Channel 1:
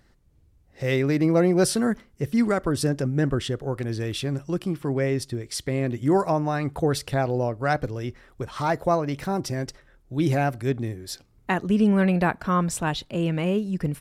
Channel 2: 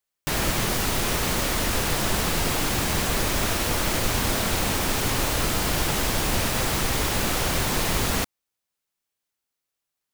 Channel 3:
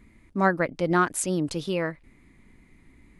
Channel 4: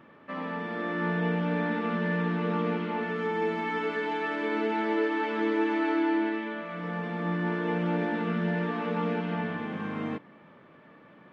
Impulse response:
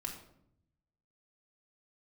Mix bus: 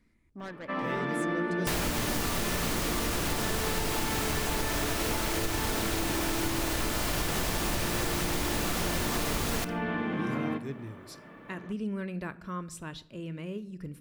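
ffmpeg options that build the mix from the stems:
-filter_complex "[0:a]equalizer=f=760:w=3.9:g=-12,volume=-15.5dB,asplit=2[a][b];[b]volume=-8.5dB[c];[1:a]adelay=1400,volume=0dB,asplit=2[d][e];[e]volume=-10.5dB[f];[2:a]asoftclip=type=tanh:threshold=-23dB,volume=-14dB[g];[3:a]alimiter=limit=-24dB:level=0:latency=1,adelay=400,volume=1dB,asplit=2[h][i];[i]volume=-5.5dB[j];[4:a]atrim=start_sample=2205[k];[c][f][j]amix=inputs=3:normalize=0[l];[l][k]afir=irnorm=-1:irlink=0[m];[a][d][g][h][m]amix=inputs=5:normalize=0,acompressor=threshold=-26dB:ratio=10"

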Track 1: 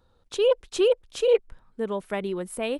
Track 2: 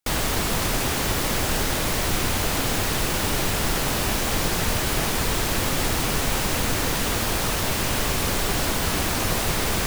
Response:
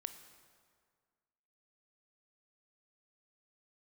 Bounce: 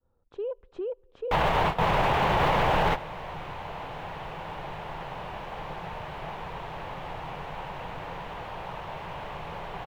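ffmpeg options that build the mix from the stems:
-filter_complex "[0:a]lowpass=1.1k,agate=range=-33dB:threshold=-60dB:ratio=3:detection=peak,alimiter=limit=-22dB:level=0:latency=1:release=57,volume=-6dB,asplit=3[a][b][c];[b]volume=-18dB[d];[1:a]firequalizer=gain_entry='entry(100,0);entry(160,8);entry(230,-6);entry(470,6);entry(890,14);entry(1300,4);entry(2900,2);entry(4900,-14);entry(8600,-23)':delay=0.05:min_phase=1,adelay=1250,volume=0.5dB,asplit=2[e][f];[f]volume=-17dB[g];[c]apad=whole_len=494366[h];[e][h]sidechaingate=range=-33dB:threshold=-59dB:ratio=16:detection=peak[i];[2:a]atrim=start_sample=2205[j];[d][g]amix=inputs=2:normalize=0[k];[k][j]afir=irnorm=-1:irlink=0[l];[a][i][l]amix=inputs=3:normalize=0,alimiter=limit=-15dB:level=0:latency=1:release=50"

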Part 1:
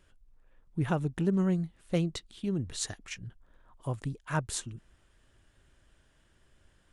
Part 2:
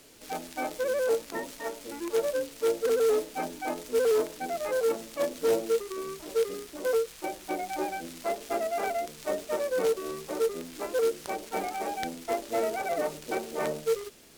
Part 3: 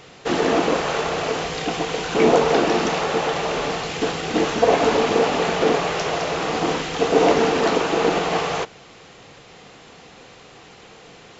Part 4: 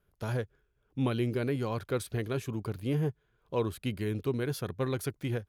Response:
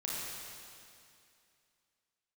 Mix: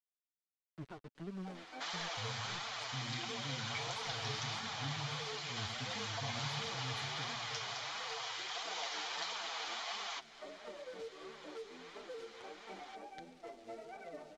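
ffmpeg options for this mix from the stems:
-filter_complex "[0:a]equalizer=f=67:t=o:w=0.93:g=-11,aeval=exprs='val(0)*gte(abs(val(0)),0.0316)':c=same,volume=-15dB[a];[1:a]adelay=1150,volume=-15dB,asplit=2[b][c];[c]volume=-11.5dB[d];[2:a]highpass=f=820:w=0.5412,highpass=f=820:w=1.3066,bandreject=f=2.7k:w=7.7,adelay=1550,volume=-3dB[e];[3:a]equalizer=f=410:w=2.1:g=-13.5,bandreject=f=60:t=h:w=6,bandreject=f=120:t=h:w=6,adelay=1950,volume=-10dB,asplit=2[f][g];[g]volume=-5dB[h];[4:a]atrim=start_sample=2205[i];[d][h]amix=inputs=2:normalize=0[j];[j][i]afir=irnorm=-1:irlink=0[k];[a][b][e][f][k]amix=inputs=5:normalize=0,flanger=delay=4.2:depth=5.5:regen=7:speed=1.5:shape=triangular,acrossover=split=240|3000[l][m][n];[m]acompressor=threshold=-46dB:ratio=4[o];[l][o][n]amix=inputs=3:normalize=0,lowpass=4.8k"

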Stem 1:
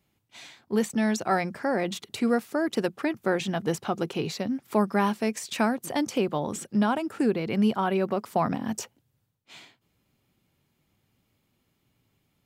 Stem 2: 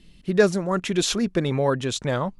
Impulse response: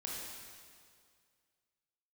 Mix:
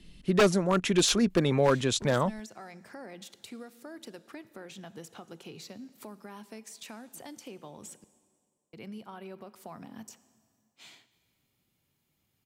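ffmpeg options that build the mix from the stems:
-filter_complex "[0:a]highshelf=f=3.7k:g=8,alimiter=limit=-20dB:level=0:latency=1:release=488,acompressor=threshold=-40dB:ratio=2,adelay=1300,volume=-8dB,asplit=3[a][b][c];[a]atrim=end=8.04,asetpts=PTS-STARTPTS,afade=t=out:st=8.036:d=0.004:c=hsin[d];[b]atrim=start=8.04:end=8.73,asetpts=PTS-STARTPTS,volume=0[e];[c]atrim=start=8.73,asetpts=PTS-STARTPTS,afade=t=in:d=0.004:c=hsin[f];[d][e][f]concat=n=3:v=0:a=1,asplit=2[g][h];[h]volume=-14dB[i];[1:a]highshelf=f=8k:g=2,volume=-1dB[j];[2:a]atrim=start_sample=2205[k];[i][k]afir=irnorm=-1:irlink=0[l];[g][j][l]amix=inputs=3:normalize=0,acrossover=split=150|3000[m][n][o];[m]acompressor=threshold=-37dB:ratio=2.5[p];[p][n][o]amix=inputs=3:normalize=0,aeval=exprs='0.188*(abs(mod(val(0)/0.188+3,4)-2)-1)':c=same"

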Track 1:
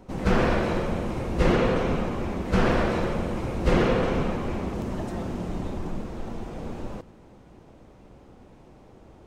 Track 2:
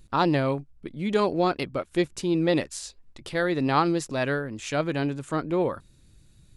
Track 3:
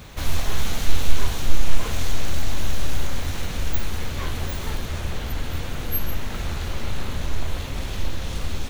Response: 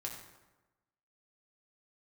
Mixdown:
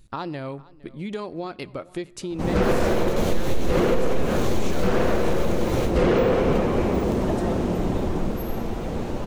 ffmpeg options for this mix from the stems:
-filter_complex "[0:a]adynamicequalizer=threshold=0.0126:dfrequency=450:dqfactor=1.2:tfrequency=450:tqfactor=1.2:attack=5:release=100:ratio=0.375:range=3:mode=boostabove:tftype=bell,acontrast=89,adelay=2300,volume=-1.5dB[a];[1:a]acompressor=threshold=-28dB:ratio=6,volume=-1dB,asplit=4[b][c][d][e];[c]volume=-16dB[f];[d]volume=-21.5dB[g];[2:a]adelay=2450,volume=-2.5dB,asplit=2[h][i];[i]volume=-9dB[j];[e]apad=whole_len=491523[k];[h][k]sidechaingate=range=-33dB:threshold=-50dB:ratio=16:detection=peak[l];[3:a]atrim=start_sample=2205[m];[f][j]amix=inputs=2:normalize=0[n];[n][m]afir=irnorm=-1:irlink=0[o];[g]aecho=0:1:461:1[p];[a][b][l][o][p]amix=inputs=5:normalize=0,alimiter=limit=-11.5dB:level=0:latency=1:release=222"

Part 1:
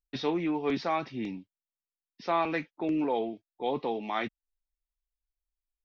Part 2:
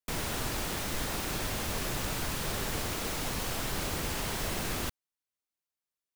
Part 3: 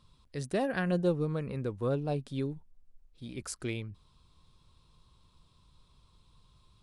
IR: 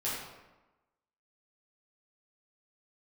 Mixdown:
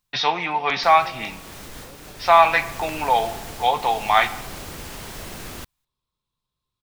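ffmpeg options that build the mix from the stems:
-filter_complex "[0:a]firequalizer=gain_entry='entry(150,0);entry(280,-11);entry(720,14)':delay=0.05:min_phase=1,volume=1dB,asplit=2[a][b];[b]volume=-17.5dB[c];[1:a]adelay=750,volume=-2dB[d];[2:a]lowshelf=f=130:g=-9.5,volume=-19dB,asplit=3[e][f][g];[f]volume=-10dB[h];[g]apad=whole_len=304386[i];[d][i]sidechaincompress=threshold=-54dB:ratio=8:attack=43:release=681[j];[3:a]atrim=start_sample=2205[k];[c][h]amix=inputs=2:normalize=0[l];[l][k]afir=irnorm=-1:irlink=0[m];[a][j][e][m]amix=inputs=4:normalize=0"

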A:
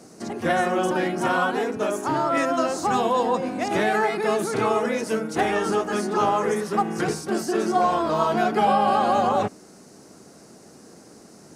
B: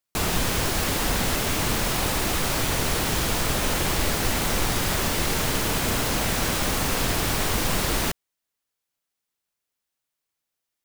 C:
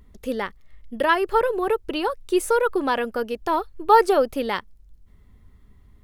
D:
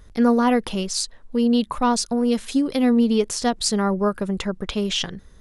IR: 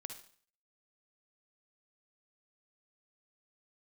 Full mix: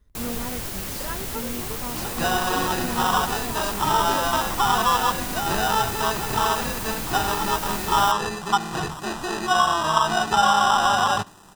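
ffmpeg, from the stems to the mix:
-filter_complex "[0:a]acrusher=samples=20:mix=1:aa=0.000001,acrossover=split=5400[a][b];[b]acompressor=threshold=-46dB:ratio=4:attack=1:release=60[c];[a][c]amix=inputs=2:normalize=0,equalizer=f=250:t=o:w=1:g=-8,equalizer=f=500:t=o:w=1:g=-11,equalizer=f=1k:t=o:w=1:g=8,equalizer=f=2k:t=o:w=1:g=-5,equalizer=f=8k:t=o:w=1:g=8,adelay=1750,volume=0.5dB,asplit=2[d][e];[e]volume=-16dB[f];[1:a]highshelf=f=9k:g=10,volume=-10.5dB[g];[2:a]volume=-16.5dB[h];[3:a]volume=-17dB[i];[4:a]atrim=start_sample=2205[j];[f][j]afir=irnorm=-1:irlink=0[k];[d][g][h][i][k]amix=inputs=5:normalize=0,lowshelf=f=200:g=3"

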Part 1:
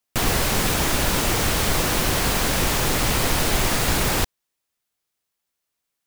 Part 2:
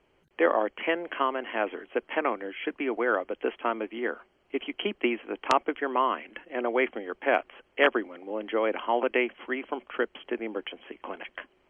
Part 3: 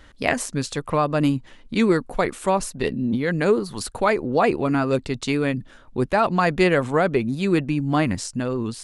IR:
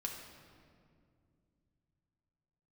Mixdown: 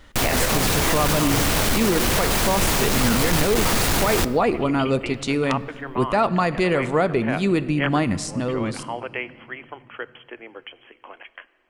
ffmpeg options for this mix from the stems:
-filter_complex "[0:a]asoftclip=type=tanh:threshold=-20dB,volume=2.5dB,asplit=2[a][b];[b]volume=-10dB[c];[1:a]equalizer=f=180:w=0.44:g=-13,volume=-2dB,asplit=2[d][e];[e]volume=-12.5dB[f];[2:a]bandreject=f=1.6k:w=12,volume=-1.5dB,asplit=2[g][h];[h]volume=-8.5dB[i];[3:a]atrim=start_sample=2205[j];[c][f][i]amix=inputs=3:normalize=0[k];[k][j]afir=irnorm=-1:irlink=0[l];[a][d][g][l]amix=inputs=4:normalize=0,alimiter=limit=-10dB:level=0:latency=1:release=53"

